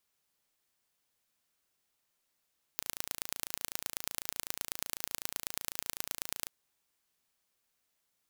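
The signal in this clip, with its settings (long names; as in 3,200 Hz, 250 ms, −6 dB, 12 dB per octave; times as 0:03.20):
impulse train 28 per second, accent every 3, −6 dBFS 3.71 s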